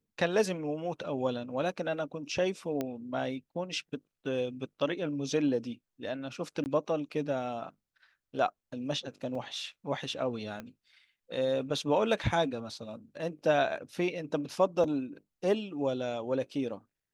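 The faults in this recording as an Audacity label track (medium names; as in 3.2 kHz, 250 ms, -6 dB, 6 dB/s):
2.810000	2.810000	pop -19 dBFS
6.640000	6.660000	dropout 19 ms
9.350000	9.350000	dropout 3.2 ms
10.600000	10.600000	pop -26 dBFS
14.840000	14.840000	dropout 2.7 ms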